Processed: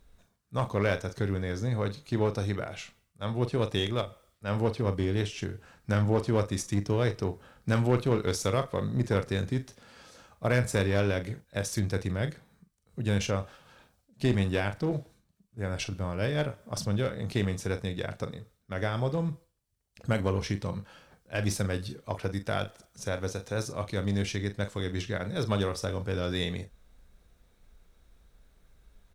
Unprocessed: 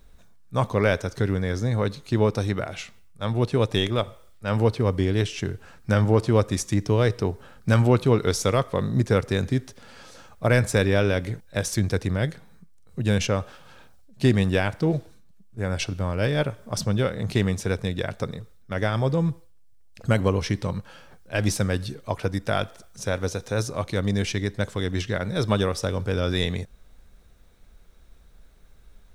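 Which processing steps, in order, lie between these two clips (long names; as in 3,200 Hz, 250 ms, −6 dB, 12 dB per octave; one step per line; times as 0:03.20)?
double-tracking delay 40 ms −11 dB
asymmetric clip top −20.5 dBFS
level −6 dB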